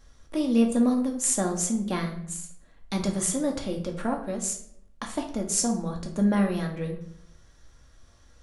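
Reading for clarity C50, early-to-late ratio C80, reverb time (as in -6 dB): 8.0 dB, 12.0 dB, 0.70 s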